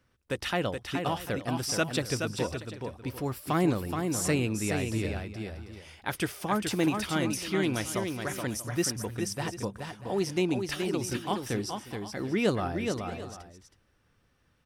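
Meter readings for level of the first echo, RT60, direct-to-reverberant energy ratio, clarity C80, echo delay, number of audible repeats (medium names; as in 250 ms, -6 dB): -5.5 dB, no reverb, no reverb, no reverb, 424 ms, 3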